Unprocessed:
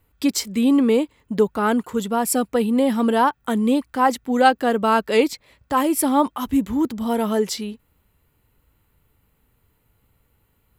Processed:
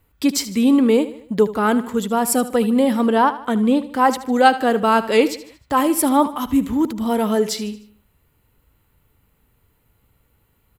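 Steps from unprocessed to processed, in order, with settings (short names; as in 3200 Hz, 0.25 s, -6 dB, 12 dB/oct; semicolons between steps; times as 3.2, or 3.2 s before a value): 3.06–3.92 high shelf 6300 Hz -9.5 dB; feedback echo 76 ms, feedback 46%, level -15 dB; gain +2 dB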